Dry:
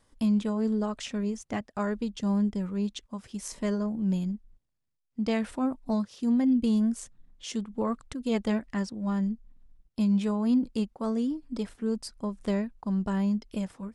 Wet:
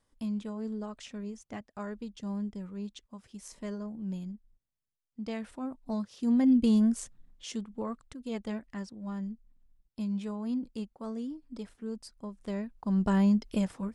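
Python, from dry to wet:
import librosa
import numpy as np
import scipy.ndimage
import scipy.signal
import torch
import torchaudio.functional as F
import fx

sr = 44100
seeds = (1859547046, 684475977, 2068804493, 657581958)

y = fx.gain(x, sr, db=fx.line((5.66, -9.0), (6.49, 1.0), (7.01, 1.0), (8.05, -8.5), (12.46, -8.5), (13.07, 3.0)))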